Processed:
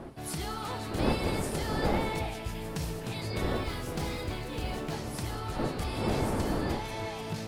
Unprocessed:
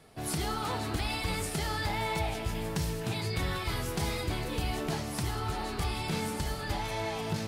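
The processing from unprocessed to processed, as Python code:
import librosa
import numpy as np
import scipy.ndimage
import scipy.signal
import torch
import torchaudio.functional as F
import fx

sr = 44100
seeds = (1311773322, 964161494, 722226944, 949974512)

y = fx.rattle_buzz(x, sr, strikes_db=-28.0, level_db=-35.0)
y = fx.dmg_wind(y, sr, seeds[0], corner_hz=470.0, level_db=-32.0)
y = fx.resample_linear(y, sr, factor=2, at=(3.52, 4.94))
y = y * 10.0 ** (-3.0 / 20.0)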